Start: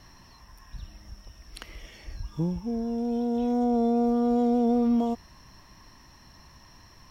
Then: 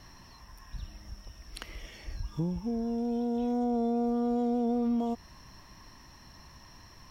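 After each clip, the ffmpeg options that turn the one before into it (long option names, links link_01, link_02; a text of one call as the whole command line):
ffmpeg -i in.wav -af "acompressor=threshold=-30dB:ratio=2" out.wav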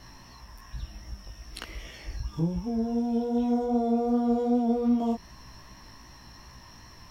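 ffmpeg -i in.wav -af "flanger=delay=15.5:depth=3.2:speed=2.6,volume=6.5dB" out.wav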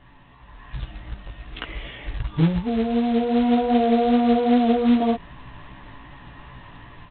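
ffmpeg -i in.wav -af "aecho=1:1:7:0.35,dynaudnorm=framelen=370:gausssize=3:maxgain=9.5dB,aresample=8000,acrusher=bits=4:mode=log:mix=0:aa=0.000001,aresample=44100,volume=-2dB" out.wav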